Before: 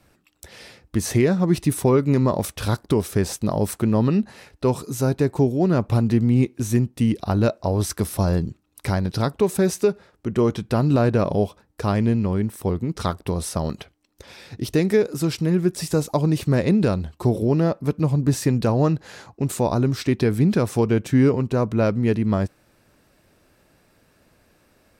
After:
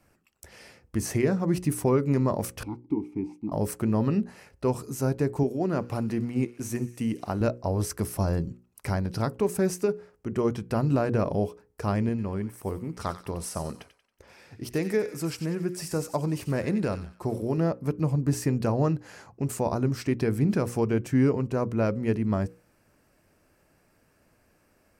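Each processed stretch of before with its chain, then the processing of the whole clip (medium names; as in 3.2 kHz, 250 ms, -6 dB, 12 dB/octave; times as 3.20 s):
2.63–3.52 s: vowel filter u + bass shelf 380 Hz +12 dB
5.43–7.41 s: high-pass 200 Hz 6 dB/octave + feedback echo behind a high-pass 63 ms, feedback 85%, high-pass 1.8 kHz, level -19.5 dB
12.09–17.58 s: bass shelf 350 Hz -4.5 dB + feedback echo behind a high-pass 92 ms, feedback 44%, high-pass 1.6 kHz, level -9 dB + tape noise reduction on one side only decoder only
whole clip: peaking EQ 3.7 kHz -10.5 dB 0.39 oct; hum notches 60/120/180/240/300/360/420/480/540 Hz; trim -5 dB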